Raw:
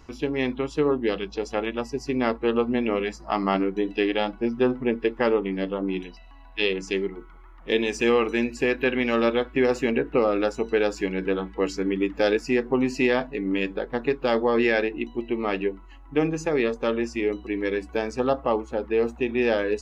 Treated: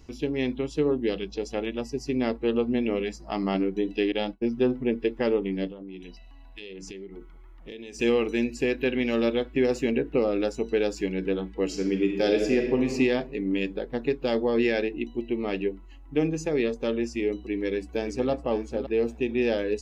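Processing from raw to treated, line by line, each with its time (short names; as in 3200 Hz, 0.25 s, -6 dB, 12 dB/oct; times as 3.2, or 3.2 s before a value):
4.12–4.57 expander -32 dBFS
5.67–7.99 compressor 8:1, threshold -35 dBFS
11.65–12.92 reverb throw, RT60 1.3 s, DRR 3 dB
17.41–18.3 echo throw 0.56 s, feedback 15%, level -10.5 dB
whole clip: bell 1200 Hz -11 dB 1.5 oct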